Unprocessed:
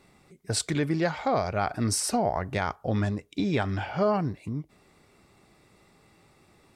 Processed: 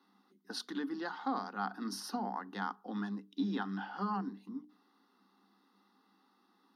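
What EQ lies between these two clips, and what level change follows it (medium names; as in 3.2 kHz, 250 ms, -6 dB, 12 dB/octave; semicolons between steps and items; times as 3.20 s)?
rippled Chebyshev high-pass 190 Hz, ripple 9 dB; hum notches 60/120/180/240/300/360/420 Hz; static phaser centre 2.3 kHz, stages 6; 0.0 dB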